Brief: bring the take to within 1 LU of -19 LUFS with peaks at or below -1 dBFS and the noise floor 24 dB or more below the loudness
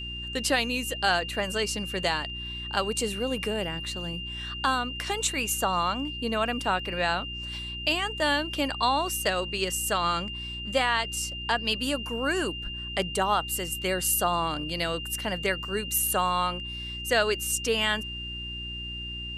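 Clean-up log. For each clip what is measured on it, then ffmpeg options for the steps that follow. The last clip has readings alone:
hum 60 Hz; harmonics up to 360 Hz; hum level -38 dBFS; steady tone 2800 Hz; tone level -35 dBFS; loudness -27.5 LUFS; peak -12.0 dBFS; loudness target -19.0 LUFS
-> -af "bandreject=f=60:t=h:w=4,bandreject=f=120:t=h:w=4,bandreject=f=180:t=h:w=4,bandreject=f=240:t=h:w=4,bandreject=f=300:t=h:w=4,bandreject=f=360:t=h:w=4"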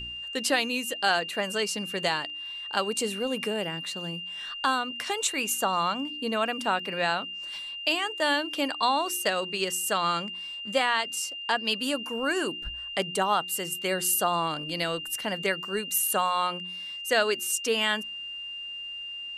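hum none; steady tone 2800 Hz; tone level -35 dBFS
-> -af "bandreject=f=2.8k:w=30"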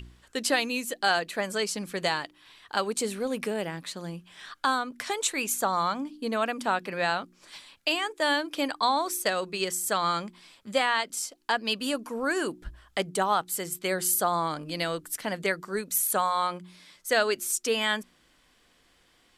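steady tone none; loudness -28.0 LUFS; peak -12.5 dBFS; loudness target -19.0 LUFS
-> -af "volume=9dB"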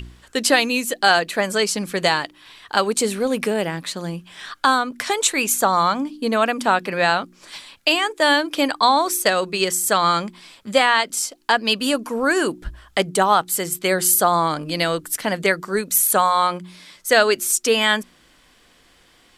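loudness -19.0 LUFS; peak -3.5 dBFS; noise floor -55 dBFS

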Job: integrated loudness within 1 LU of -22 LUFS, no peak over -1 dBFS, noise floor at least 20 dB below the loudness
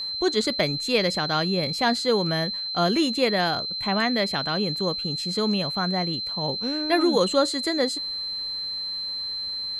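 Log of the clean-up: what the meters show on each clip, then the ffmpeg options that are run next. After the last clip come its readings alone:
steady tone 4100 Hz; tone level -28 dBFS; loudness -24.0 LUFS; peak -8.0 dBFS; loudness target -22.0 LUFS
-> -af "bandreject=f=4.1k:w=30"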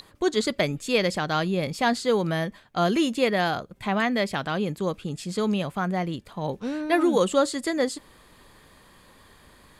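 steady tone none; loudness -25.5 LUFS; peak -8.5 dBFS; loudness target -22.0 LUFS
-> -af "volume=3.5dB"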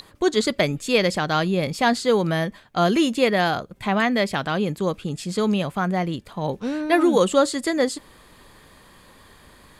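loudness -22.0 LUFS; peak -5.0 dBFS; noise floor -51 dBFS

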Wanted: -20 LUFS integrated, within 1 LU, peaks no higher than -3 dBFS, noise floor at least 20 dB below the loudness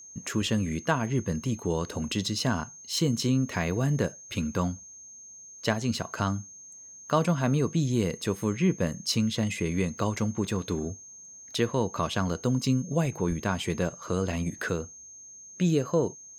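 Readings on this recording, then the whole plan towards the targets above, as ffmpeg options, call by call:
steady tone 6400 Hz; tone level -45 dBFS; loudness -28.5 LUFS; peak -9.5 dBFS; loudness target -20.0 LUFS
-> -af "bandreject=f=6.4k:w=30"
-af "volume=8.5dB,alimiter=limit=-3dB:level=0:latency=1"

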